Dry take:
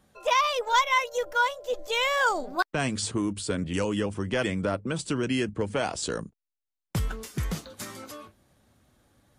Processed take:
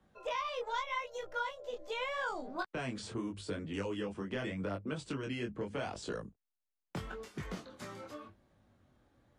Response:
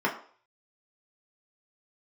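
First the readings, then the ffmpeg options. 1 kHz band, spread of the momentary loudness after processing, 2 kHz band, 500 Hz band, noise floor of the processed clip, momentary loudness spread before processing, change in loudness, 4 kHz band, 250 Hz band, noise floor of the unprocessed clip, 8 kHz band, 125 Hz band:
−13.0 dB, 9 LU, −12.5 dB, −10.0 dB, below −85 dBFS, 12 LU, −12.0 dB, −14.0 dB, −10.0 dB, below −85 dBFS, −18.0 dB, −11.0 dB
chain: -filter_complex "[0:a]aemphasis=mode=reproduction:type=75fm,acrossover=split=110|220|2100[link_01][link_02][link_03][link_04];[link_01]acompressor=threshold=-47dB:ratio=4[link_05];[link_02]acompressor=threshold=-43dB:ratio=4[link_06];[link_03]acompressor=threshold=-32dB:ratio=4[link_07];[link_04]acompressor=threshold=-39dB:ratio=4[link_08];[link_05][link_06][link_07][link_08]amix=inputs=4:normalize=0,flanger=delay=19.5:depth=5.7:speed=0.82,volume=-2dB"

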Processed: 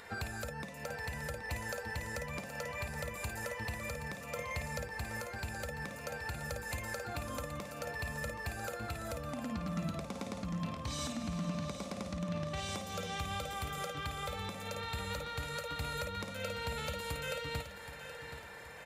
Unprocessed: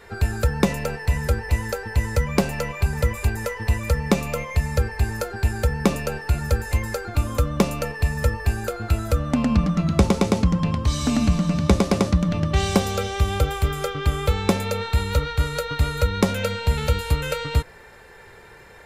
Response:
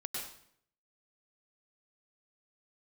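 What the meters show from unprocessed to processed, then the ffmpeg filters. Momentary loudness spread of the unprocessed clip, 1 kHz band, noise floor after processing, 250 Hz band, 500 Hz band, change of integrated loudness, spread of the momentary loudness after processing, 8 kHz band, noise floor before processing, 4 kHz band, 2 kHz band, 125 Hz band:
5 LU, −12.5 dB, −48 dBFS, −19.0 dB, −16.0 dB, −16.5 dB, 4 LU, −11.5 dB, −46 dBFS, −11.5 dB, −10.0 dB, −20.0 dB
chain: -filter_complex "[0:a]highpass=frequency=190:poles=1,equalizer=frequency=390:width_type=o:width=0.26:gain=-11,acompressor=threshold=-30dB:ratio=5,alimiter=limit=-23dB:level=0:latency=1:release=359,acompressor=mode=upward:threshold=-50dB:ratio=2.5,aecho=1:1:774|1548|2322|3096|3870:0.282|0.127|0.0571|0.0257|0.0116[link_01];[1:a]atrim=start_sample=2205,atrim=end_sample=4410,asetrate=79380,aresample=44100[link_02];[link_01][link_02]afir=irnorm=-1:irlink=0,volume=5dB"

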